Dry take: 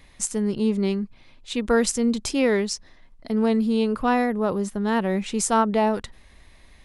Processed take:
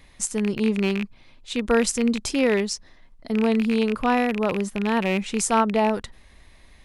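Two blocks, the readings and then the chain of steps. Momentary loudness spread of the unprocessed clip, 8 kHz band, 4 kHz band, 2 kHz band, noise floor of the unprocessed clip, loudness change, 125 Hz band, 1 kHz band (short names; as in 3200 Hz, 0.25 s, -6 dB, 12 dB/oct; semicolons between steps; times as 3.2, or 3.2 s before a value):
9 LU, 0.0 dB, +1.5 dB, +2.5 dB, -52 dBFS, 0.0 dB, 0.0 dB, 0.0 dB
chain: rattling part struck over -30 dBFS, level -18 dBFS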